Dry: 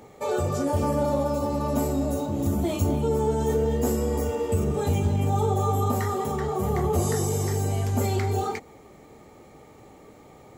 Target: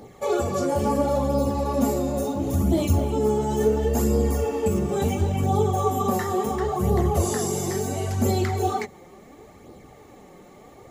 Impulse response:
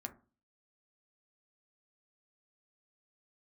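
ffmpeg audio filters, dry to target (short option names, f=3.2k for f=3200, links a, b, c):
-af "bandreject=f=50:t=h:w=6,bandreject=f=100:t=h:w=6,bandreject=f=150:t=h:w=6,asetrate=42777,aresample=44100,flanger=delay=0.2:depth=5.5:regen=34:speed=0.72:shape=sinusoidal,volume=6dB"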